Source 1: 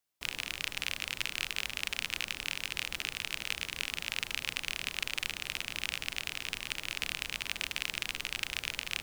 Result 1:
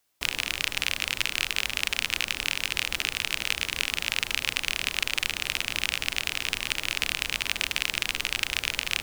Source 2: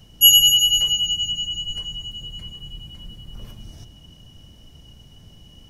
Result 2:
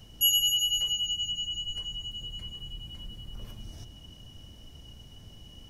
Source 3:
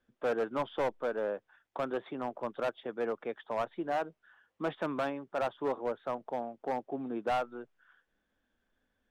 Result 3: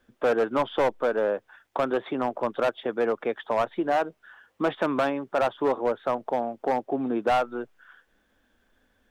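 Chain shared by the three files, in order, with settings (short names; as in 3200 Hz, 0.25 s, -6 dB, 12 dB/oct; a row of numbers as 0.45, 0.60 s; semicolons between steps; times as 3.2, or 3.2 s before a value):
bell 160 Hz -4.5 dB 0.46 oct; compressor 1.5:1, threshold -38 dBFS; match loudness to -27 LUFS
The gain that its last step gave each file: +11.5, -1.5, +12.0 dB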